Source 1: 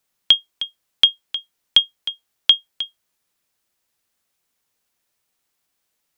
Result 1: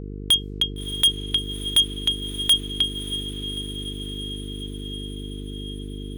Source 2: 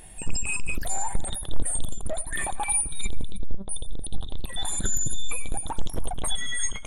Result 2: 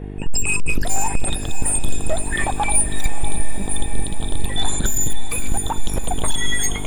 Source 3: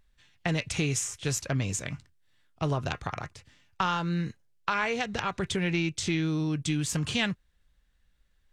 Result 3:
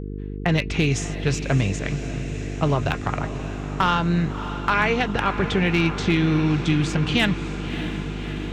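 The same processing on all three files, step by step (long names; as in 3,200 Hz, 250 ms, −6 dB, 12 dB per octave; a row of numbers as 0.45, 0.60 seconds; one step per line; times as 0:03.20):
low-pass that shuts in the quiet parts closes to 1,600 Hz, open at −17.5 dBFS
hum with harmonics 50 Hz, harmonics 9, −39 dBFS −4 dB per octave
hard clipping −18.5 dBFS
feedback delay with all-pass diffusion 620 ms, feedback 72%, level −11.5 dB
loudness normalisation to −23 LKFS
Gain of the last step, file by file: +5.0, +8.5, +8.0 decibels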